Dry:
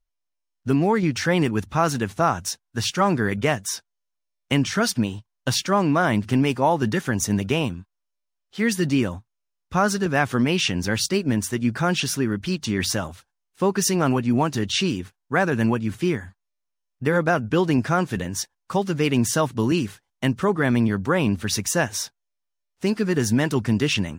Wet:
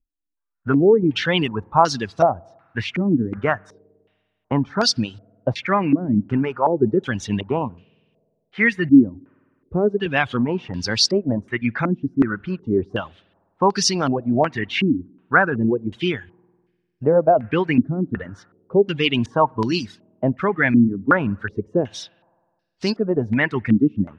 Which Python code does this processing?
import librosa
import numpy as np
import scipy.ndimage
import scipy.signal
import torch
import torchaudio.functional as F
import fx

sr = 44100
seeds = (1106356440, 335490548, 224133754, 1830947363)

y = fx.rev_spring(x, sr, rt60_s=1.8, pass_ms=(50,), chirp_ms=55, drr_db=18.5)
y = fx.dereverb_blind(y, sr, rt60_s=1.2)
y = fx.filter_held_lowpass(y, sr, hz=2.7, low_hz=280.0, high_hz=4800.0)